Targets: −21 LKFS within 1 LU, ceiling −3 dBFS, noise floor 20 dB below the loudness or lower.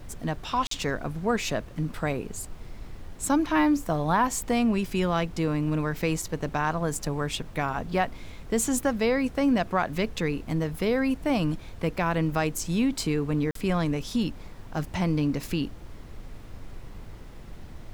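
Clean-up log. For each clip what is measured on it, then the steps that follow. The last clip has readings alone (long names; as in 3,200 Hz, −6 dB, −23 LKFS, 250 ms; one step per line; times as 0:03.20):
number of dropouts 2; longest dropout 43 ms; background noise floor −43 dBFS; target noise floor −48 dBFS; integrated loudness −27.5 LKFS; sample peak −11.5 dBFS; target loudness −21.0 LKFS
→ repair the gap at 0:00.67/0:13.51, 43 ms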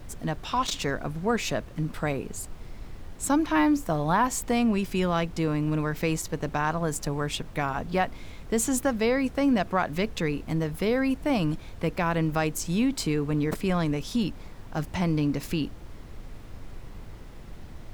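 number of dropouts 0; background noise floor −43 dBFS; target noise floor −48 dBFS
→ noise reduction from a noise print 6 dB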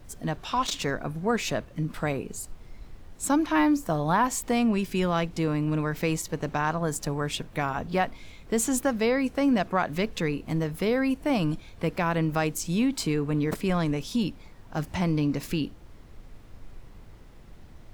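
background noise floor −49 dBFS; integrated loudness −27.5 LKFS; sample peak −11.5 dBFS; target loudness −21.0 LKFS
→ level +6.5 dB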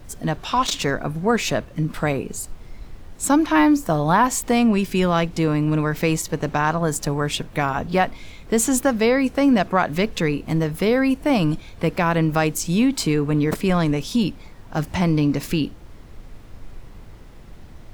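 integrated loudness −21.0 LKFS; sample peak −5.0 dBFS; background noise floor −42 dBFS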